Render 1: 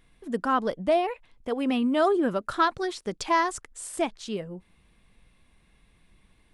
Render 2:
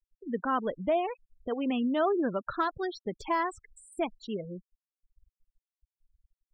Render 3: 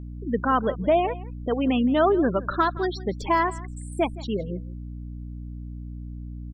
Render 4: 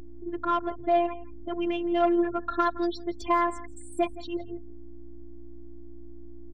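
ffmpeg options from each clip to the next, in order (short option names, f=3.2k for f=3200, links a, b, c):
-filter_complex "[0:a]asplit=2[a][b];[b]acompressor=threshold=-33dB:ratio=16,volume=-3dB[c];[a][c]amix=inputs=2:normalize=0,afftfilt=real='re*gte(hypot(re,im),0.0355)':imag='im*gte(hypot(re,im),0.0355)':win_size=1024:overlap=0.75,deesser=0.95,volume=-5.5dB"
-af "aeval=exprs='val(0)+0.00794*(sin(2*PI*60*n/s)+sin(2*PI*2*60*n/s)/2+sin(2*PI*3*60*n/s)/3+sin(2*PI*4*60*n/s)/4+sin(2*PI*5*60*n/s)/5)':c=same,aecho=1:1:167:0.106,volume=7dB"
-af "asoftclip=type=tanh:threshold=-13.5dB,afftfilt=real='hypot(re,im)*cos(PI*b)':imag='0':win_size=512:overlap=0.75"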